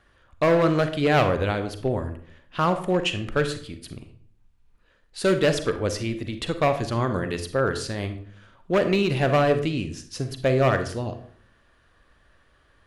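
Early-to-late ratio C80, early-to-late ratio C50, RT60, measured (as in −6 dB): 14.0 dB, 10.5 dB, 0.55 s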